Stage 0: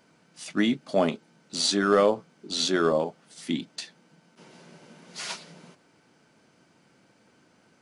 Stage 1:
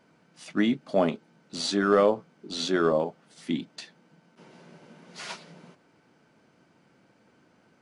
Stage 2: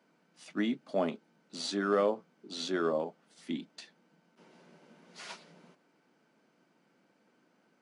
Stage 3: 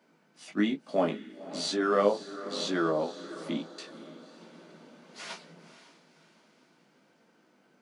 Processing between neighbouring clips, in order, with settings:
high-shelf EQ 3,900 Hz −9.5 dB
high-pass filter 170 Hz 24 dB per octave; level −7 dB
chorus effect 1.1 Hz, delay 17.5 ms, depth 3.3 ms; feedback delay with all-pass diffusion 529 ms, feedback 45%, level −14 dB; level +7 dB

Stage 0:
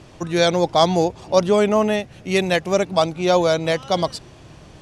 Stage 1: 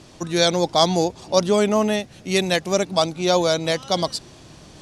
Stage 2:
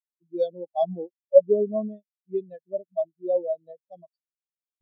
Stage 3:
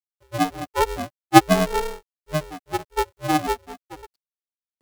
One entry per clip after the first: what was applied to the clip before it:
drawn EQ curve 120 Hz 0 dB, 230 Hz +5 dB, 460 Hz +2 dB, 2,800 Hz +3 dB, 4,000 Hz +9 dB; reversed playback; upward compression, threshold −36 dBFS; reversed playback; level −4.5 dB
every bin expanded away from the loudest bin 4 to 1; level −2 dB
mu-law and A-law mismatch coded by mu; ring modulator with a square carrier 230 Hz; level +2.5 dB

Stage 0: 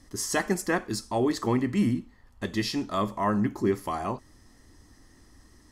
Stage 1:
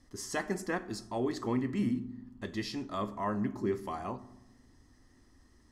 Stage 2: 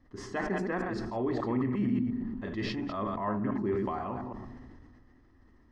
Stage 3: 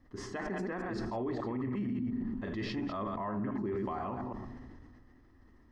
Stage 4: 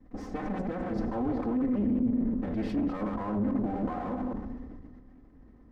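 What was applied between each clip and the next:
high-shelf EQ 10,000 Hz −10 dB; on a send at −13 dB: convolution reverb RT60 0.95 s, pre-delay 4 ms; on the sum: level −7.5 dB
delay that plays each chunk backwards 117 ms, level −6.5 dB; low-pass filter 2,200 Hz 12 dB per octave; level that may fall only so fast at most 25 dB per second
brickwall limiter −28 dBFS, peak gain reduction 9 dB
lower of the sound and its delayed copy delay 3.9 ms; tilt shelving filter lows +9 dB, about 1,200 Hz; highs frequency-modulated by the lows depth 0.1 ms

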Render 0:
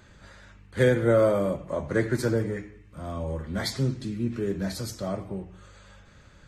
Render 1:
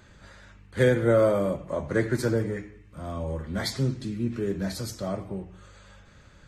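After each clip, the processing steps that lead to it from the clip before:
no processing that can be heard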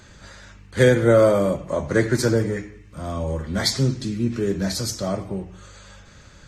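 parametric band 5,900 Hz +7 dB 1.1 octaves
level +5.5 dB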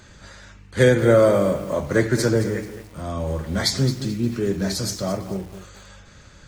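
feedback echo at a low word length 217 ms, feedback 35%, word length 6 bits, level −12 dB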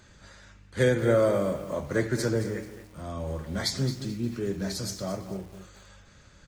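single-tap delay 249 ms −19 dB
level −7.5 dB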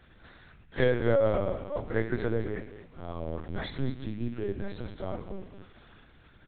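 linear-prediction vocoder at 8 kHz pitch kept
level −2 dB

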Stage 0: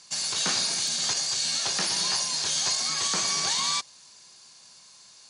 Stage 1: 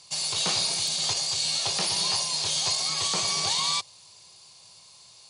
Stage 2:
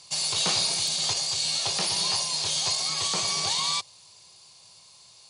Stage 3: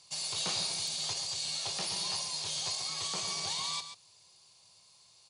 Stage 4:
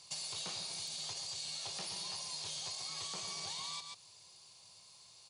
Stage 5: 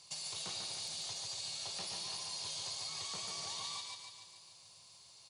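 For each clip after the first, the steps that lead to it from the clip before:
graphic EQ with 15 bands 100 Hz +7 dB, 250 Hz −11 dB, 1,600 Hz −12 dB, 6,300 Hz −7 dB; level +4 dB
speech leveller 2 s
single-tap delay 136 ms −10 dB; level −9 dB
downward compressor 6 to 1, threshold −42 dBFS, peak gain reduction 11.5 dB; level +2 dB
repeating echo 145 ms, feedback 57%, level −5 dB; level −1.5 dB

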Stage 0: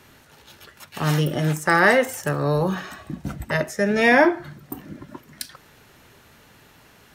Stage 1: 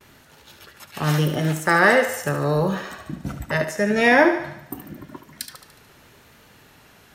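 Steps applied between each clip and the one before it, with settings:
pitch vibrato 0.83 Hz 28 cents
feedback echo with a high-pass in the loop 73 ms, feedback 56%, high-pass 290 Hz, level −9 dB
noise gate with hold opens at −43 dBFS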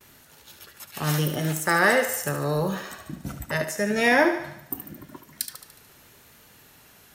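high-shelf EQ 6,400 Hz +12 dB
level −4.5 dB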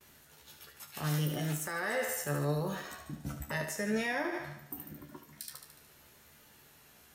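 brickwall limiter −18.5 dBFS, peak gain reduction 11.5 dB
tuned comb filter 73 Hz, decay 0.16 s, harmonics all, mix 90%
level −1.5 dB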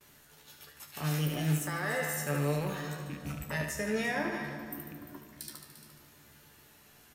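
loose part that buzzes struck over −42 dBFS, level −38 dBFS
single-tap delay 347 ms −13 dB
convolution reverb RT60 2.5 s, pre-delay 7 ms, DRR 7.5 dB

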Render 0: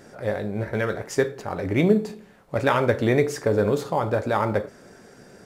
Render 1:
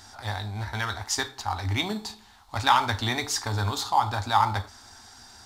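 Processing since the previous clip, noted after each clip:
drawn EQ curve 100 Hz 0 dB, 150 Hz −29 dB, 240 Hz −12 dB, 530 Hz −27 dB, 820 Hz +2 dB, 1,600 Hz −6 dB, 2,500 Hz −6 dB, 3,800 Hz +8 dB, 10,000 Hz −1 dB
level +5 dB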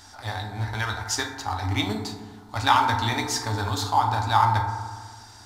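feedback delay network reverb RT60 1.6 s, low-frequency decay 1.05×, high-frequency decay 0.3×, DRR 4 dB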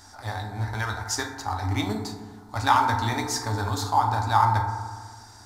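parametric band 3,000 Hz −8 dB 0.86 octaves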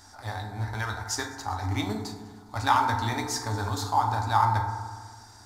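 delay with a high-pass on its return 102 ms, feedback 74%, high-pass 4,200 Hz, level −19 dB
level −2.5 dB

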